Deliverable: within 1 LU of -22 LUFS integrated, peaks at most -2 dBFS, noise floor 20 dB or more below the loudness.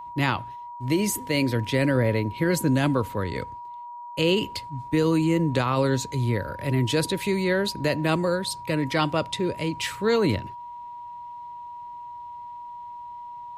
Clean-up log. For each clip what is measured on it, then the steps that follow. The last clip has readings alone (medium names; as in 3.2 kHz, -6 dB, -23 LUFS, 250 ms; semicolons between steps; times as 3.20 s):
steady tone 960 Hz; tone level -36 dBFS; loudness -25.0 LUFS; peak level -11.0 dBFS; loudness target -22.0 LUFS
-> band-stop 960 Hz, Q 30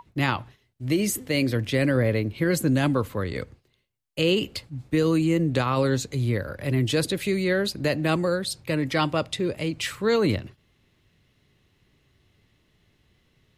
steady tone not found; loudness -25.0 LUFS; peak level -11.5 dBFS; loudness target -22.0 LUFS
-> trim +3 dB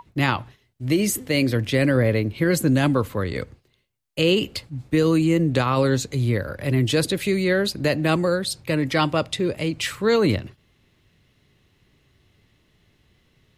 loudness -22.0 LUFS; peak level -8.5 dBFS; noise floor -64 dBFS